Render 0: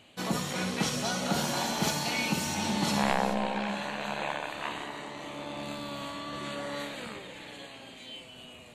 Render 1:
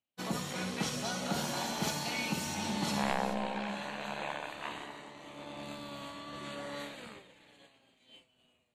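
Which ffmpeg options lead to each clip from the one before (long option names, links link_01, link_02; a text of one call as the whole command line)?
ffmpeg -i in.wav -af "agate=range=-33dB:threshold=-36dB:ratio=3:detection=peak,volume=-5dB" out.wav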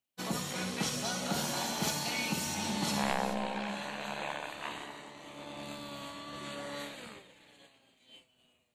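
ffmpeg -i in.wav -af "highshelf=frequency=4700:gain=5" out.wav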